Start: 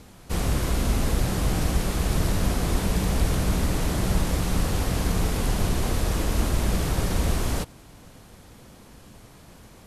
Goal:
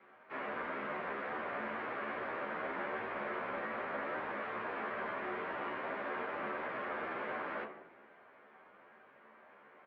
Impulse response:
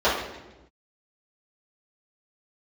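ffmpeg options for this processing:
-filter_complex "[0:a]aderivative,highpass=frequency=270:width_type=q:width=0.5412,highpass=frequency=270:width_type=q:width=1.307,lowpass=frequency=2100:width_type=q:width=0.5176,lowpass=frequency=2100:width_type=q:width=0.7071,lowpass=frequency=2100:width_type=q:width=1.932,afreqshift=-72,asplit=2[link_01][link_02];[1:a]atrim=start_sample=2205,lowshelf=frequency=160:gain=10[link_03];[link_02][link_03]afir=irnorm=-1:irlink=0,volume=-22dB[link_04];[link_01][link_04]amix=inputs=2:normalize=0,asplit=2[link_05][link_06];[link_06]adelay=11.9,afreqshift=2.5[link_07];[link_05][link_07]amix=inputs=2:normalize=1,volume=12.5dB"

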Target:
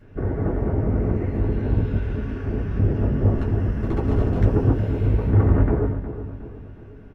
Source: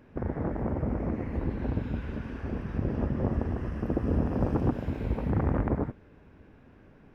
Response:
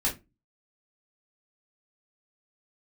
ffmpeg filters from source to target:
-filter_complex "[0:a]asettb=1/sr,asplit=3[link_01][link_02][link_03];[link_01]atrim=end=3.334[link_04];[link_02]atrim=start=3.33:end=4.43,asetpts=PTS-STARTPTS,afade=type=in:duration=0.004:curve=qsin,afade=type=out:start_time=1.096:duration=0.004:curve=qsin,aeval=exprs='0.0794*(abs(mod(val(0)/0.0794+3,4)-2)-1)':channel_layout=same[link_05];[link_03]atrim=start=4.426[link_06];[link_04][link_05]acrossfade=duration=0.004:curve1=hsin:curve2=qsin[link_07];[link_07][link_06]acrossfade=duration=0.004:curve1=qsin:curve2=hsin,asplit=2[link_08][link_09];[link_09]adelay=363,lowpass=frequency=2100:poles=1,volume=-11dB,asplit=2[link_10][link_11];[link_11]adelay=363,lowpass=frequency=2100:poles=1,volume=0.47,asplit=2[link_12][link_13];[link_13]adelay=363,lowpass=frequency=2100:poles=1,volume=0.47,asplit=2[link_14][link_15];[link_15]adelay=363,lowpass=frequency=2100:poles=1,volume=0.47,asplit=2[link_16][link_17];[link_17]adelay=363,lowpass=frequency=2100:poles=1,volume=0.47[link_18];[link_08][link_10][link_12][link_14][link_16][link_18]amix=inputs=6:normalize=0[link_19];[1:a]atrim=start_sample=2205,asetrate=70560,aresample=44100[link_20];[link_19][link_20]afir=irnorm=-1:irlink=0"

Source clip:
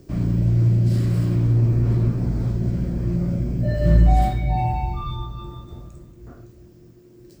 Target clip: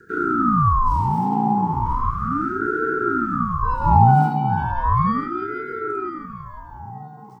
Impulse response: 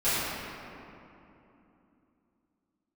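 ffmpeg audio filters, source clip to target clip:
-filter_complex "[0:a]lowshelf=frequency=340:gain=11,bandreject=frequency=1700:width=7.6,afreqshift=400,asplit=2[link_01][link_02];[link_02]adelay=980,lowpass=frequency=2100:poles=1,volume=-7dB,asplit=2[link_03][link_04];[link_04]adelay=980,lowpass=frequency=2100:poles=1,volume=0.35,asplit=2[link_05][link_06];[link_06]adelay=980,lowpass=frequency=2100:poles=1,volume=0.35,asplit=2[link_07][link_08];[link_08]adelay=980,lowpass=frequency=2100:poles=1,volume=0.35[link_09];[link_03][link_05][link_07][link_09]amix=inputs=4:normalize=0[link_10];[link_01][link_10]amix=inputs=2:normalize=0,aeval=exprs='val(0)*sin(2*PI*600*n/s+600*0.5/0.35*sin(2*PI*0.35*n/s))':channel_layout=same,volume=-7dB"

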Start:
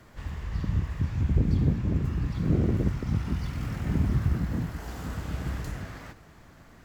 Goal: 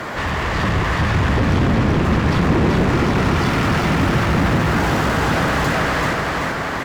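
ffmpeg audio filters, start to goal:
ffmpeg -i in.wav -filter_complex "[0:a]asplit=2[link_01][link_02];[link_02]highpass=frequency=720:poles=1,volume=41dB,asoftclip=type=tanh:threshold=-11dB[link_03];[link_01][link_03]amix=inputs=2:normalize=0,lowpass=frequency=1700:poles=1,volume=-6dB,aecho=1:1:384|768|1152|1536|1920|2304|2688|3072:0.708|0.404|0.23|0.131|0.0747|0.0426|0.0243|0.0138" out.wav

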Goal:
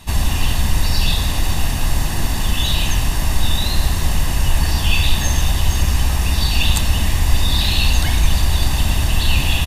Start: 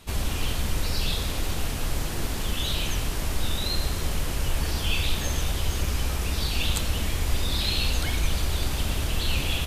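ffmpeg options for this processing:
ffmpeg -i in.wav -af "aecho=1:1:1.1:0.54,volume=7dB" out.wav

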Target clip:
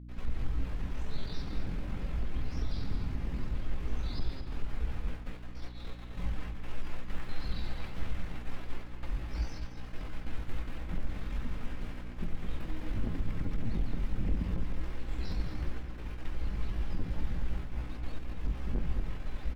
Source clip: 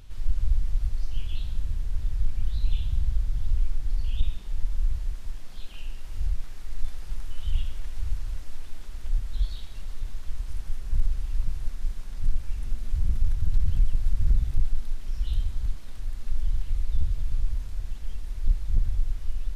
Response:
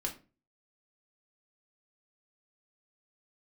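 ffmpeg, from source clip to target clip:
-filter_complex "[0:a]agate=range=-33dB:threshold=-23dB:ratio=3:detection=peak,acrossover=split=150 2300:gain=0.1 1 0.112[link_01][link_02][link_03];[link_01][link_02][link_03]amix=inputs=3:normalize=0,acompressor=threshold=-41dB:ratio=2.5,asetrate=60591,aresample=44100,atempo=0.727827,asplit=2[link_04][link_05];[link_05]adelay=215.7,volume=-7dB,highshelf=frequency=4000:gain=-4.85[link_06];[link_04][link_06]amix=inputs=2:normalize=0,asplit=2[link_07][link_08];[1:a]atrim=start_sample=2205[link_09];[link_08][link_09]afir=irnorm=-1:irlink=0,volume=-6.5dB[link_10];[link_07][link_10]amix=inputs=2:normalize=0,aeval=exprs='val(0)+0.00224*(sin(2*PI*60*n/s)+sin(2*PI*2*60*n/s)/2+sin(2*PI*3*60*n/s)/3+sin(2*PI*4*60*n/s)/4+sin(2*PI*5*60*n/s)/5)':channel_layout=same,volume=8dB"

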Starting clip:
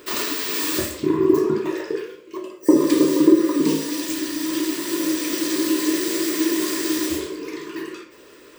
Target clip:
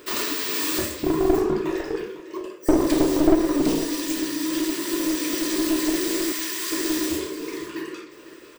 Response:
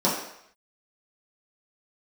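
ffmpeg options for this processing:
-filter_complex "[0:a]asettb=1/sr,asplit=3[link_01][link_02][link_03];[link_01]atrim=end=6.324[link_04];[link_02]atrim=start=6.32:end=6.72,asetpts=PTS-STARTPTS,afade=type=in:duration=0.004:curve=qsin,afade=type=out:start_time=0.396:duration=0.004:curve=qsin,highpass=1100[link_05];[link_03]atrim=start=6.716[link_06];[link_04][link_05]acrossfade=duration=0.004:curve1=hsin:curve2=qsin[link_07];[link_07][link_06]acrossfade=duration=0.004:curve1=qsin:curve2=hsin,aeval=exprs='clip(val(0),-1,0.106)':channel_layout=same,aecho=1:1:502:0.188,volume=-1dB"

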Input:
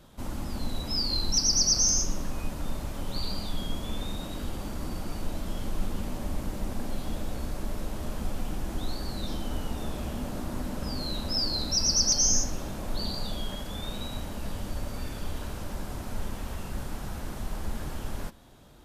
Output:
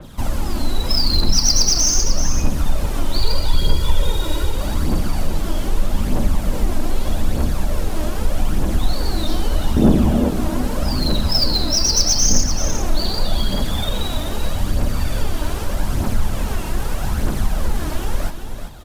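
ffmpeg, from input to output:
ffmpeg -i in.wav -filter_complex "[0:a]asettb=1/sr,asplit=3[link_01][link_02][link_03];[link_01]atrim=end=3.194[link_04];[link_02]atrim=start=3.19:end=4.52,asetpts=PTS-STARTPTS,afade=type=in:duration=0.004:curve=qsin,afade=type=out:start_time=1.326:duration=0.004:curve=qsin,aecho=1:1:2.1:0.68,atrim=end_sample=58653[link_05];[link_03]atrim=start=4.516[link_06];[link_04][link_05]acrossfade=duration=0.004:curve1=hsin:curve2=qsin[link_07];[link_07][link_06]acrossfade=duration=0.004:curve1=qsin:curve2=hsin,asettb=1/sr,asplit=3[link_08][link_09][link_10];[link_08]atrim=end=9.764[link_11];[link_09]atrim=start=9.76:end=10.29,asetpts=PTS-STARTPTS,afade=type=in:duration=0.004:curve=qsin,afade=type=out:start_time=0.526:duration=0.004:curve=qsin,equalizer=frequency=250:width_type=o:width=2.7:gain=14.5[link_12];[link_10]atrim=start=10.286[link_13];[link_11][link_12]acrossfade=duration=0.004:curve1=hsin:curve2=qsin[link_14];[link_14][link_13]acrossfade=duration=0.004:curve1=qsin:curve2=hsin,asplit=2[link_15][link_16];[link_16]acompressor=threshold=-32dB:ratio=6,volume=3dB[link_17];[link_15][link_17]amix=inputs=2:normalize=0,aphaser=in_gain=1:out_gain=1:delay=3.3:decay=0.5:speed=0.81:type=triangular,acrossover=split=270|1300[link_18][link_19][link_20];[link_20]acrusher=bits=4:mode=log:mix=0:aa=0.000001[link_21];[link_18][link_19][link_21]amix=inputs=3:normalize=0,aecho=1:1:385:0.355,adynamicequalizer=threshold=0.0251:dfrequency=4100:dqfactor=0.7:tfrequency=4100:tqfactor=0.7:attack=5:release=100:ratio=0.375:range=2:mode=cutabove:tftype=highshelf,volume=4.5dB" out.wav

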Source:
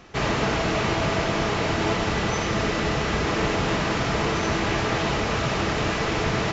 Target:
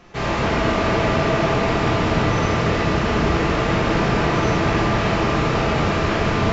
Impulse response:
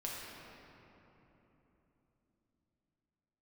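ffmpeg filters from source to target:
-filter_complex "[0:a]highshelf=frequency=3700:gain=-4.5,acontrast=80[link_01];[1:a]atrim=start_sample=2205[link_02];[link_01][link_02]afir=irnorm=-1:irlink=0,volume=-3.5dB"

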